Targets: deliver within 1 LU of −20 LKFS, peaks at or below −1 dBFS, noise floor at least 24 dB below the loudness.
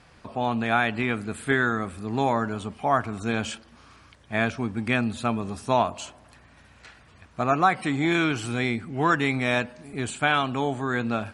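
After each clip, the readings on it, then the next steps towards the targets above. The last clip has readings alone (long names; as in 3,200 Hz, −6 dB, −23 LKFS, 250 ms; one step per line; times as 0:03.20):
integrated loudness −25.5 LKFS; sample peak −7.5 dBFS; target loudness −20.0 LKFS
→ level +5.5 dB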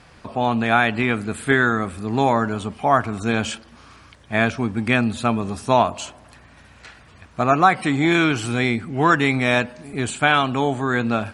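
integrated loudness −20.0 LKFS; sample peak −2.0 dBFS; background noise floor −49 dBFS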